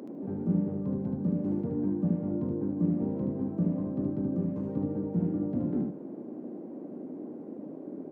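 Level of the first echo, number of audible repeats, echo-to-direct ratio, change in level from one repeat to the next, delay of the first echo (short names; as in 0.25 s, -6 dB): -4.5 dB, 2, -4.5 dB, -14.0 dB, 75 ms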